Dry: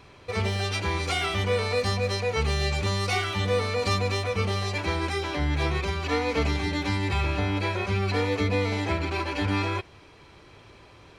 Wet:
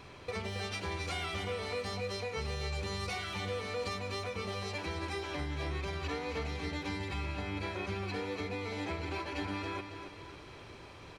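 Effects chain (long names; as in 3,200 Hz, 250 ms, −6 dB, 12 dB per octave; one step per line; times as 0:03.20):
mains-hum notches 50/100 Hz
downward compressor 4 to 1, threshold −37 dBFS, peak gain reduction 13.5 dB
repeating echo 274 ms, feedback 47%, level −8.5 dB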